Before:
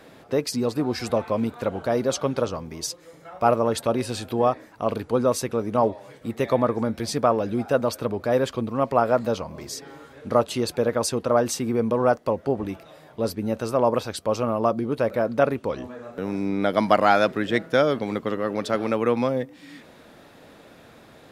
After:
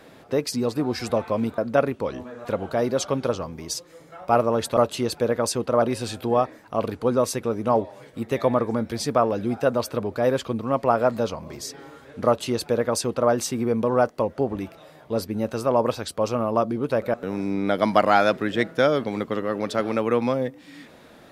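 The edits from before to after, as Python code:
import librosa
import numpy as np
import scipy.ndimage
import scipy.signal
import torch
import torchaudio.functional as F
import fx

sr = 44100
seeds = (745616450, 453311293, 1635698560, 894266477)

y = fx.edit(x, sr, fx.duplicate(start_s=10.34, length_s=1.05, to_s=3.9),
    fx.move(start_s=15.22, length_s=0.87, to_s=1.58), tone=tone)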